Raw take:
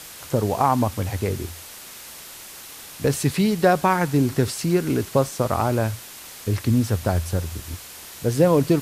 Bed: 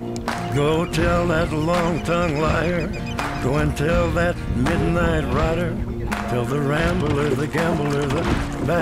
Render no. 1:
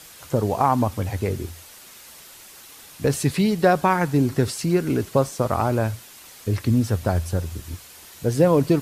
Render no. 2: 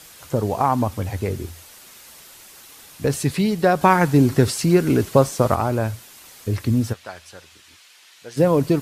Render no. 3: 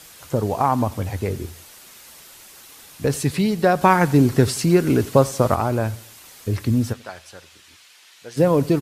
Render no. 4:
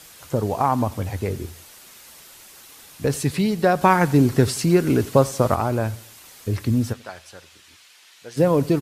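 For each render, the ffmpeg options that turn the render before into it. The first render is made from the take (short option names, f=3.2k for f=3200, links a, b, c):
-af "afftdn=nr=6:nf=-41"
-filter_complex "[0:a]asplit=3[a][b][c];[a]afade=t=out:st=6.92:d=0.02[d];[b]bandpass=f=2.8k:t=q:w=0.85,afade=t=in:st=6.92:d=0.02,afade=t=out:st=8.36:d=0.02[e];[c]afade=t=in:st=8.36:d=0.02[f];[d][e][f]amix=inputs=3:normalize=0,asplit=3[g][h][i];[g]atrim=end=3.812[j];[h]atrim=start=3.808:end=5.552,asetpts=PTS-STARTPTS,volume=4.5dB[k];[i]atrim=start=5.548[l];[j][k]acrossfade=d=0.004:c1=hsin:c2=hsin[m];[m][l]acrossfade=d=0.004:c1=hsin:c2=hsin"
-af "aecho=1:1:90|180|270:0.075|0.0345|0.0159"
-af "volume=-1dB"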